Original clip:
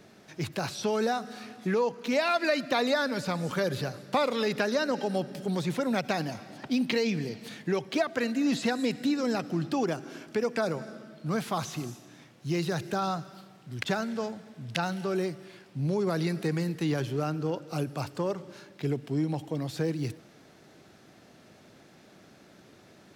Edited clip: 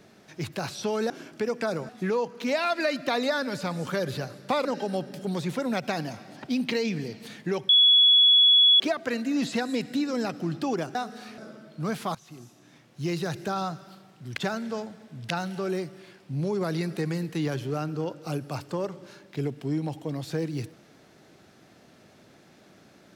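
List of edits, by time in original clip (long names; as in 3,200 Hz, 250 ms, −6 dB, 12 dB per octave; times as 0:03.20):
0:01.10–0:01.53: swap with 0:10.05–0:10.84
0:04.29–0:04.86: remove
0:07.90: insert tone 3,380 Hz −14 dBFS 1.11 s
0:11.61–0:12.46: fade in, from −20.5 dB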